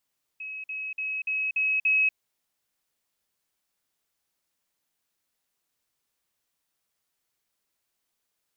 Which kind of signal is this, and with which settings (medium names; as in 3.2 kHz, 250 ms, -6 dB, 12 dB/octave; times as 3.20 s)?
level ladder 2.56 kHz -34 dBFS, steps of 3 dB, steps 6, 0.24 s 0.05 s